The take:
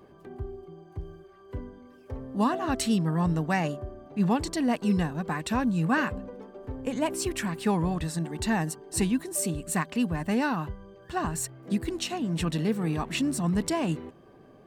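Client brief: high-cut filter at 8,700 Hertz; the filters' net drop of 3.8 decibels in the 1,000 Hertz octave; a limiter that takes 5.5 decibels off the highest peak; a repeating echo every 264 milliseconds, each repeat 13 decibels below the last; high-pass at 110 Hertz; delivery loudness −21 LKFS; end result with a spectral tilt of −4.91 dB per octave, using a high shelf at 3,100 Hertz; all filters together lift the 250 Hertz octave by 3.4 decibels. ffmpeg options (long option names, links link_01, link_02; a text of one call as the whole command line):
ffmpeg -i in.wav -af "highpass=110,lowpass=8700,equalizer=frequency=250:width_type=o:gain=5,equalizer=frequency=1000:width_type=o:gain=-6,highshelf=frequency=3100:gain=7.5,alimiter=limit=-17dB:level=0:latency=1,aecho=1:1:264|528|792:0.224|0.0493|0.0108,volume=6dB" out.wav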